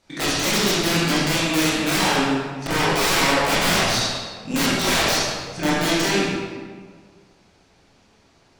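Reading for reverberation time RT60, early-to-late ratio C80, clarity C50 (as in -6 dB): 1.7 s, 0.5 dB, -2.5 dB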